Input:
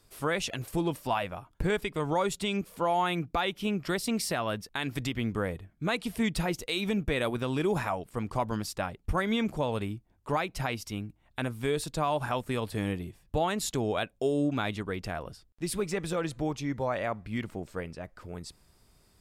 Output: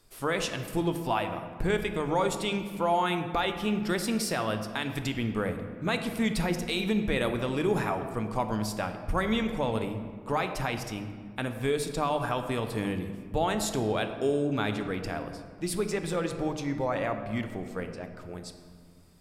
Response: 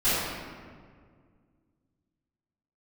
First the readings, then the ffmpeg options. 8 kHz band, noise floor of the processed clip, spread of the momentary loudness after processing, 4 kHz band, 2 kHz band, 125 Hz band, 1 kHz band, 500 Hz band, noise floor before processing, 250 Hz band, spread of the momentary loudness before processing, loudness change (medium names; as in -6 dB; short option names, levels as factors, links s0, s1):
+0.5 dB, -47 dBFS, 8 LU, +1.0 dB, +1.0 dB, +1.0 dB, +1.5 dB, +1.5 dB, -66 dBFS, +1.5 dB, 9 LU, +1.5 dB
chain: -filter_complex "[0:a]bandreject=f=50:t=h:w=6,bandreject=f=100:t=h:w=6,bandreject=f=150:t=h:w=6,asplit=2[s0][s1];[1:a]atrim=start_sample=2205[s2];[s1][s2]afir=irnorm=-1:irlink=0,volume=0.0841[s3];[s0][s3]amix=inputs=2:normalize=0"